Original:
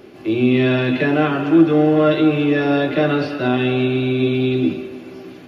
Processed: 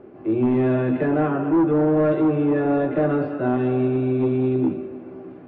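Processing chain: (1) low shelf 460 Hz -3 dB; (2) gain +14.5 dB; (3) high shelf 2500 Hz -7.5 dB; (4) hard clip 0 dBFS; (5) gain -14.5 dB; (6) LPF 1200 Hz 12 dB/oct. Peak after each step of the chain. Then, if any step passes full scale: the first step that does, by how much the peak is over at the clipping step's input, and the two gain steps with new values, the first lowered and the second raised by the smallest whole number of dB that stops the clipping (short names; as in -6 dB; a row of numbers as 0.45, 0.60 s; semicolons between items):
-4.5, +10.0, +10.0, 0.0, -14.5, -14.0 dBFS; step 2, 10.0 dB; step 2 +4.5 dB, step 5 -4.5 dB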